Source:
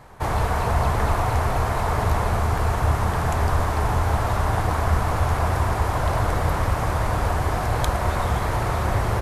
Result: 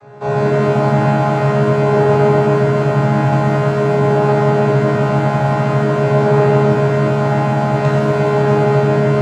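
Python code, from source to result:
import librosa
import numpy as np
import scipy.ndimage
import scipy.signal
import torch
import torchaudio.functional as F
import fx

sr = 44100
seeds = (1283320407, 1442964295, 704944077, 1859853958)

y = fx.chord_vocoder(x, sr, chord='bare fifth', root=49)
y = fx.rev_shimmer(y, sr, seeds[0], rt60_s=1.3, semitones=7, shimmer_db=-8, drr_db=-6.5)
y = F.gain(torch.from_numpy(y), 3.0).numpy()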